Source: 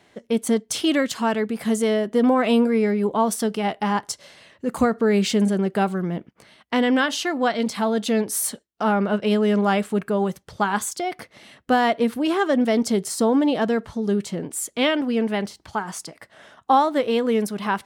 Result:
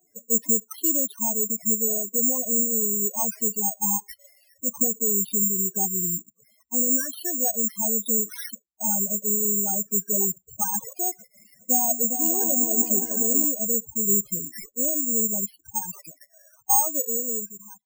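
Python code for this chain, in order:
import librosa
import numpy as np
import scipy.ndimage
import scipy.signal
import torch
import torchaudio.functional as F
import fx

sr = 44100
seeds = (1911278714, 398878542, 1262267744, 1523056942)

y = fx.fade_out_tail(x, sr, length_s=1.42)
y = fx.rider(y, sr, range_db=3, speed_s=0.5)
y = fx.spec_topn(y, sr, count=4)
y = fx.echo_opening(y, sr, ms=203, hz=200, octaves=2, feedback_pct=70, wet_db=-3, at=(11.18, 13.45))
y = (np.kron(y[::6], np.eye(6)[0]) * 6)[:len(y)]
y = y * 10.0 ** (-9.0 / 20.0)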